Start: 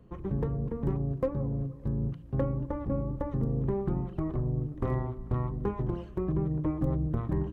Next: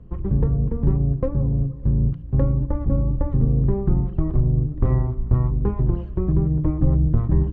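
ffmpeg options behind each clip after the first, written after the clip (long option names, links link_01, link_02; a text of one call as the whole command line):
ffmpeg -i in.wav -af "aemphasis=mode=reproduction:type=bsi,volume=2dB" out.wav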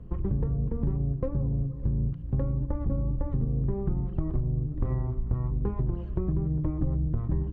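ffmpeg -i in.wav -af "acompressor=threshold=-25dB:ratio=4" out.wav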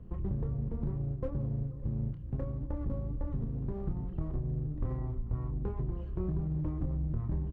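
ffmpeg -i in.wav -filter_complex "[0:a]asplit=2[link_01][link_02];[link_02]volume=32dB,asoftclip=hard,volume=-32dB,volume=-6dB[link_03];[link_01][link_03]amix=inputs=2:normalize=0,asplit=2[link_04][link_05];[link_05]adelay=27,volume=-8dB[link_06];[link_04][link_06]amix=inputs=2:normalize=0,volume=-8dB" out.wav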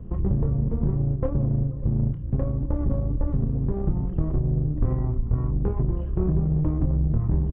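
ffmpeg -i in.wav -af "tiltshelf=frequency=1500:gain=4,aeval=exprs='0.141*(cos(1*acos(clip(val(0)/0.141,-1,1)))-cos(1*PI/2))+0.00794*(cos(6*acos(clip(val(0)/0.141,-1,1)))-cos(6*PI/2))':channel_layout=same,aresample=8000,aresample=44100,volume=6.5dB" out.wav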